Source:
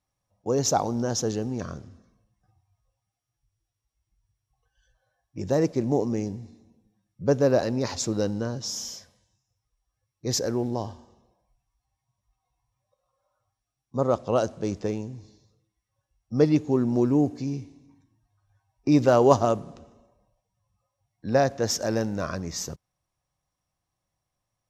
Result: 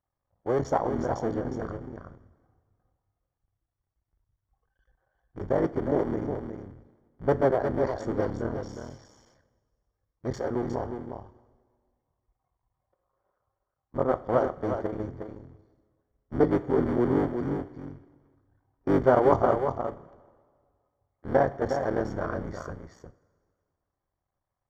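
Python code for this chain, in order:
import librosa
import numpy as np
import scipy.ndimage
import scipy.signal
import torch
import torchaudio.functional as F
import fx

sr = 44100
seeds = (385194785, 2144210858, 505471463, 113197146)

y = fx.cycle_switch(x, sr, every=3, mode='muted')
y = scipy.signal.savgol_filter(y, 41, 4, mode='constant')
y = fx.peak_eq(y, sr, hz=190.0, db=-7.5, octaves=0.57)
y = y + 10.0 ** (-7.0 / 20.0) * np.pad(y, (int(360 * sr / 1000.0), 0))[:len(y)]
y = fx.rev_double_slope(y, sr, seeds[0], early_s=0.3, late_s=2.0, knee_db=-17, drr_db=12.5)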